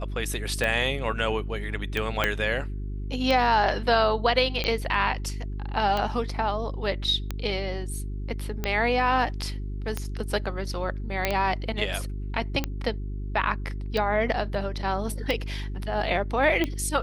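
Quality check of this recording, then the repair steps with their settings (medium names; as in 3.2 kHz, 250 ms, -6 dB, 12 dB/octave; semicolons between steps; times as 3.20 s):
hum 50 Hz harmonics 8 -32 dBFS
tick 45 rpm -13 dBFS
2.24 s: pop -8 dBFS
11.25 s: pop -8 dBFS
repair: de-click; de-hum 50 Hz, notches 8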